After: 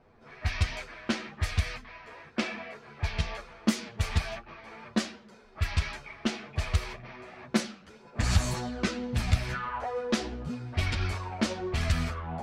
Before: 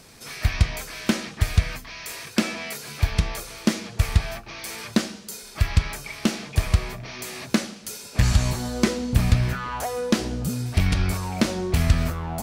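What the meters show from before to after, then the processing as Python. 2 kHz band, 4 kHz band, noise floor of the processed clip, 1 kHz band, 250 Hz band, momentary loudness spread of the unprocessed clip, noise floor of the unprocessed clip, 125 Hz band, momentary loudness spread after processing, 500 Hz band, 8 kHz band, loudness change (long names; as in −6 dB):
−4.5 dB, −5.5 dB, −55 dBFS, −4.0 dB, −7.0 dB, 12 LU, −44 dBFS, −8.0 dB, 13 LU, −6.0 dB, −8.5 dB, −6.5 dB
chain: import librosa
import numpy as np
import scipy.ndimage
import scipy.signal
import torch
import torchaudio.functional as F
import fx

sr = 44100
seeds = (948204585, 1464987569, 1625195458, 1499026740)

y = fx.chorus_voices(x, sr, voices=6, hz=1.0, base_ms=11, depth_ms=3.0, mix_pct=50)
y = fx.env_lowpass(y, sr, base_hz=1000.0, full_db=-15.0)
y = fx.low_shelf(y, sr, hz=500.0, db=-7.0)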